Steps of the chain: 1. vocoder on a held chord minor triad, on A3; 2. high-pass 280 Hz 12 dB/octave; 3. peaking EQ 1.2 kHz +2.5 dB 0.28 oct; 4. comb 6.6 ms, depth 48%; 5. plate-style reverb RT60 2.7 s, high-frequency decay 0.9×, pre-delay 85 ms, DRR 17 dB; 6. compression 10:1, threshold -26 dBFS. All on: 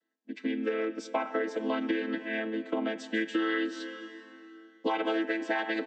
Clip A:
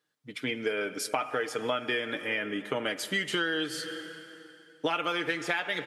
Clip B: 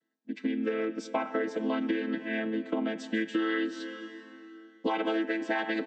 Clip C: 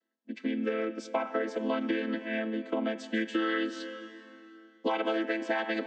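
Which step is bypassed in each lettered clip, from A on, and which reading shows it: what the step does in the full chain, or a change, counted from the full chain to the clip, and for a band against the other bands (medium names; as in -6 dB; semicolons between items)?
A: 1, 4 kHz band +8.0 dB; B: 2, 250 Hz band +2.0 dB; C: 4, momentary loudness spread change -2 LU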